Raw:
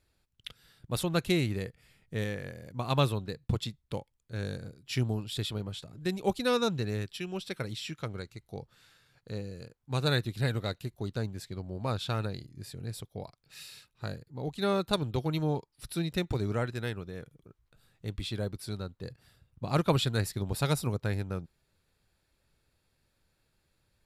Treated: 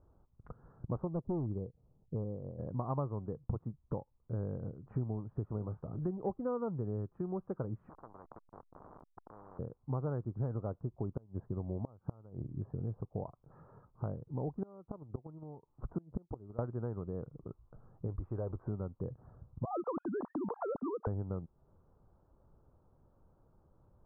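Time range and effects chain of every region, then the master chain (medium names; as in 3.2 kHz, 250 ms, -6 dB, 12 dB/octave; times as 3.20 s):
1.07–2.59 s: Gaussian low-pass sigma 9.6 samples + hard clipper -26 dBFS + upward expansion, over -47 dBFS
5.58–6.11 s: doubling 28 ms -12 dB + tape noise reduction on one side only encoder only
7.89–9.59 s: band-pass filter 1.8 kHz, Q 3.1 + hysteresis with a dead band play -57.5 dBFS + spectrum-flattening compressor 10:1
10.61–16.59 s: low-pass 1.7 kHz + inverted gate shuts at -22 dBFS, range -28 dB
18.07–18.68 s: peaking EQ 190 Hz -11 dB 1.5 oct + level flattener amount 50%
19.65–21.07 s: formants replaced by sine waves + compression 2:1, threshold -38 dBFS
whole clip: steep low-pass 1.2 kHz 48 dB/octave; compression 4:1, threshold -45 dBFS; trim +9 dB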